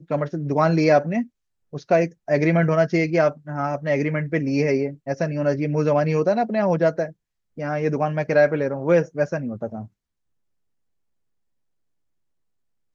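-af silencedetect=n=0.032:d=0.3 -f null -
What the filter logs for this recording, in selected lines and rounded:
silence_start: 1.23
silence_end: 1.74 | silence_duration: 0.51
silence_start: 7.09
silence_end: 7.58 | silence_duration: 0.49
silence_start: 9.83
silence_end: 12.95 | silence_duration: 3.12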